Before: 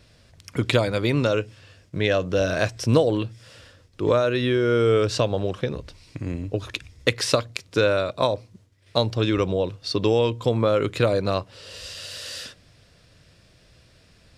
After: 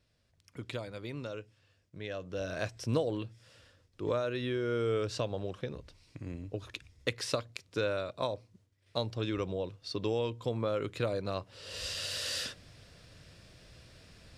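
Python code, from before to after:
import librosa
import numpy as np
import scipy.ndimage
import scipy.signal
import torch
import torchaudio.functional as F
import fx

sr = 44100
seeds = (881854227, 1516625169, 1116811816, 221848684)

y = fx.gain(x, sr, db=fx.line((2.06, -19.0), (2.66, -12.0), (11.34, -12.0), (11.82, -0.5)))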